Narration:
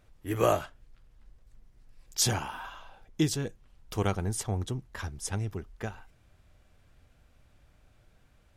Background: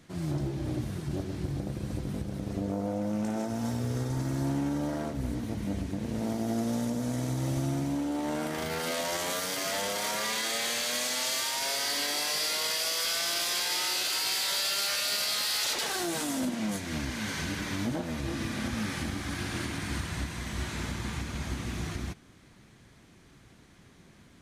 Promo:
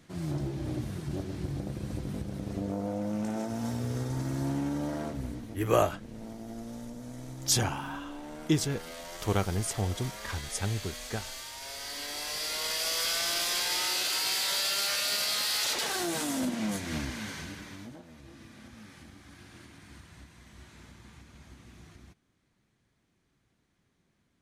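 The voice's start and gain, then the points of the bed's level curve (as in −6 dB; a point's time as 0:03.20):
5.30 s, +0.5 dB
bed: 0:05.13 −1.5 dB
0:05.64 −11.5 dB
0:11.57 −11.5 dB
0:12.94 0 dB
0:16.97 0 dB
0:18.10 −17.5 dB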